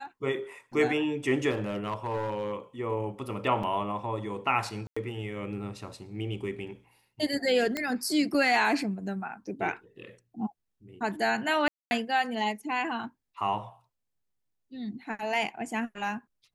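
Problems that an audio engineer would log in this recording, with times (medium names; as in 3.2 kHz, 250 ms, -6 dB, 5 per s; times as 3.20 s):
1.50–2.56 s: clipped -26 dBFS
3.63 s: dropout 4.1 ms
4.87–4.96 s: dropout 95 ms
7.77 s: pop -15 dBFS
11.68–11.91 s: dropout 230 ms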